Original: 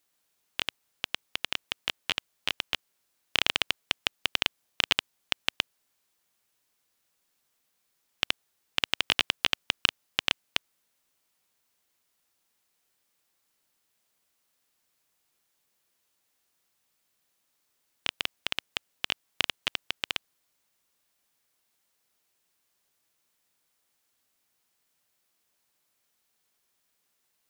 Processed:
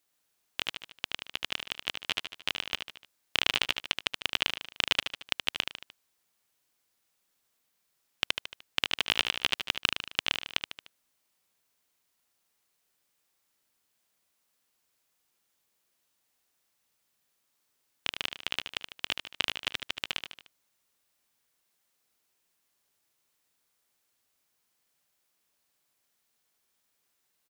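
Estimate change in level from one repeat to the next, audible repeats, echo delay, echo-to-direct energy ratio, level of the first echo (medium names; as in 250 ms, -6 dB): -6.0 dB, 4, 75 ms, -6.0 dB, -7.5 dB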